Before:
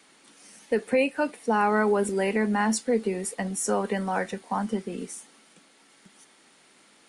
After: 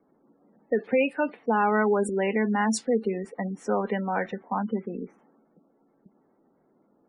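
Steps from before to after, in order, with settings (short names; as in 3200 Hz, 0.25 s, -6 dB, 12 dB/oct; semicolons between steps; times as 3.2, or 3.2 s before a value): low-pass opened by the level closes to 560 Hz, open at -19.5 dBFS; spectral gate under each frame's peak -25 dB strong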